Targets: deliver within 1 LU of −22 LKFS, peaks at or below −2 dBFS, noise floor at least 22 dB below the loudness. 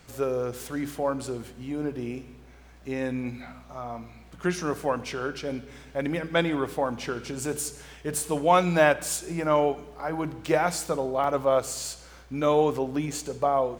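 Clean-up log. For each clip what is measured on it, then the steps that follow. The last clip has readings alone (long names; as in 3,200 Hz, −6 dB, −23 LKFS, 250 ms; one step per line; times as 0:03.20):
number of dropouts 1; longest dropout 4.3 ms; integrated loudness −27.5 LKFS; sample peak −6.0 dBFS; target loudness −22.0 LKFS
→ repair the gap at 0:11.24, 4.3 ms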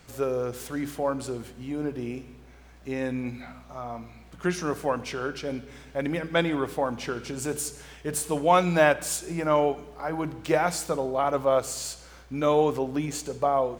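number of dropouts 0; integrated loudness −27.5 LKFS; sample peak −6.0 dBFS; target loudness −22.0 LKFS
→ level +5.5 dB
brickwall limiter −2 dBFS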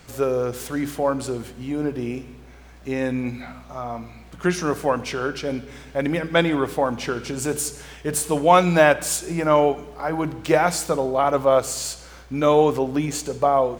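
integrated loudness −22.0 LKFS; sample peak −2.0 dBFS; background noise floor −45 dBFS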